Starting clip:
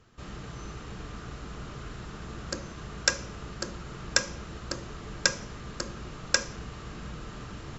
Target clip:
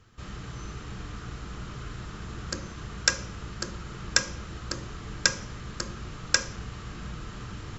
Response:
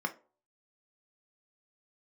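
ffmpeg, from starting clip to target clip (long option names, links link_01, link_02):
-filter_complex "[0:a]asplit=2[link_01][link_02];[1:a]atrim=start_sample=2205,asetrate=24696,aresample=44100,lowpass=4100[link_03];[link_02][link_03]afir=irnorm=-1:irlink=0,volume=-17dB[link_04];[link_01][link_04]amix=inputs=2:normalize=0,volume=1.5dB"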